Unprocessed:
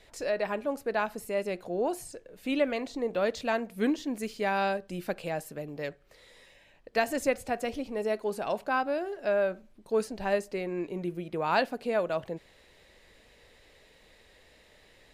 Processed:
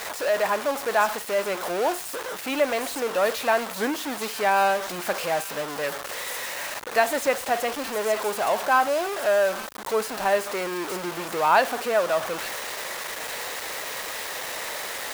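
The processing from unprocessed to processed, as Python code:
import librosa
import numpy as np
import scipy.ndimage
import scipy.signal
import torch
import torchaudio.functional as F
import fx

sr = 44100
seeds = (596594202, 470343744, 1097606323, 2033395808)

p1 = x + 0.5 * 10.0 ** (-29.5 / 20.0) * np.sign(x)
p2 = fx.peak_eq(p1, sr, hz=1000.0, db=12.5, octaves=2.5)
p3 = p2 + fx.echo_wet_highpass(p2, sr, ms=866, feedback_pct=32, hz=2800.0, wet_db=-6.0, dry=0)
p4 = np.where(np.abs(p3) >= 10.0 ** (-28.5 / 20.0), p3, 0.0)
p5 = fx.tilt_eq(p4, sr, slope=1.5)
y = F.gain(torch.from_numpy(p5), -4.5).numpy()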